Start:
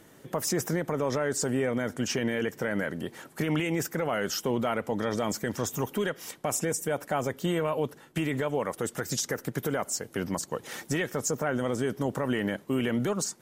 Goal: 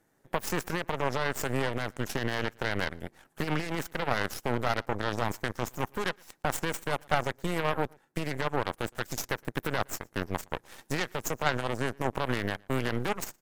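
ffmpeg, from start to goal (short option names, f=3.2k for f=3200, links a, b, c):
-filter_complex "[0:a]equalizer=f=800:t=o:w=0.33:g=7,equalizer=f=1.6k:t=o:w=0.33:g=5,equalizer=f=3.15k:t=o:w=0.33:g=-7,aeval=exprs='0.188*(cos(1*acos(clip(val(0)/0.188,-1,1)))-cos(1*PI/2))+0.0596*(cos(3*acos(clip(val(0)/0.188,-1,1)))-cos(3*PI/2))+0.00119*(cos(5*acos(clip(val(0)/0.188,-1,1)))-cos(5*PI/2))+0.015*(cos(6*acos(clip(val(0)/0.188,-1,1)))-cos(6*PI/2))+0.0015*(cos(8*acos(clip(val(0)/0.188,-1,1)))-cos(8*PI/2))':c=same,asplit=2[a][b];[b]adelay=116.6,volume=-28dB,highshelf=f=4k:g=-2.62[c];[a][c]amix=inputs=2:normalize=0,volume=5dB"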